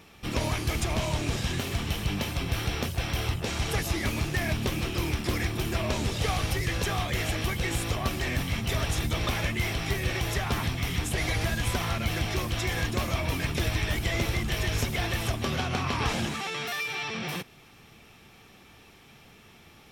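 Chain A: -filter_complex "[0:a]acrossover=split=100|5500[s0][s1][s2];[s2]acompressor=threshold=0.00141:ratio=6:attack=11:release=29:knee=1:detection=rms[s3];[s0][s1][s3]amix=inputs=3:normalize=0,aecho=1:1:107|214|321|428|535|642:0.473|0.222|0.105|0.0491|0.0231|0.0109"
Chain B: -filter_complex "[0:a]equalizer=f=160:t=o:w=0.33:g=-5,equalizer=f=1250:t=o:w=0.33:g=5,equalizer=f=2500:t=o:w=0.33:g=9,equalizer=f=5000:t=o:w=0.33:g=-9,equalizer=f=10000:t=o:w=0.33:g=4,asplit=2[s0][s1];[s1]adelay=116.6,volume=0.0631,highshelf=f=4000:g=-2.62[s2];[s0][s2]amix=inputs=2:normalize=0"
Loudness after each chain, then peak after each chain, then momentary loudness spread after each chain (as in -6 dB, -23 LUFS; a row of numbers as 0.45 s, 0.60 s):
-28.5 LUFS, -27.5 LUFS; -12.5 dBFS, -13.0 dBFS; 2 LU, 3 LU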